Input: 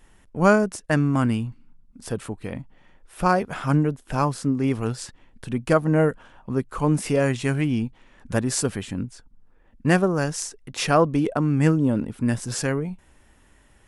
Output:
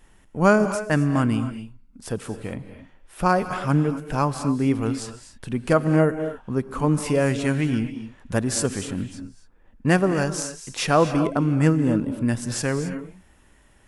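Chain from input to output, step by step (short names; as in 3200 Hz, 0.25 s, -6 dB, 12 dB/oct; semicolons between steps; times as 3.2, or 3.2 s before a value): non-linear reverb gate 0.29 s rising, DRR 9.5 dB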